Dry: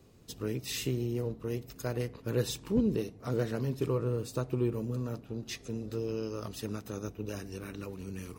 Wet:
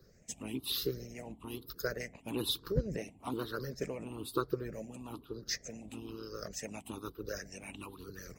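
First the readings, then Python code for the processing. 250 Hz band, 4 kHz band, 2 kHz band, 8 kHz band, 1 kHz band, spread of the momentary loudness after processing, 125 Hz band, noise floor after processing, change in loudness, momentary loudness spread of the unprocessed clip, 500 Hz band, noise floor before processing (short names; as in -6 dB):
-7.0 dB, +3.5 dB, +1.0 dB, 0.0 dB, +1.0 dB, 12 LU, -9.5 dB, -61 dBFS, -5.0 dB, 9 LU, -5.5 dB, -54 dBFS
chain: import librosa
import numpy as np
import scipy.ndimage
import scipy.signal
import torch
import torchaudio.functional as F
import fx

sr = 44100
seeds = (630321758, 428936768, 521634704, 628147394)

y = fx.spec_ripple(x, sr, per_octave=0.58, drift_hz=1.1, depth_db=20)
y = fx.hpss(y, sr, part='harmonic', gain_db=-17)
y = F.gain(torch.from_numpy(y), -1.0).numpy()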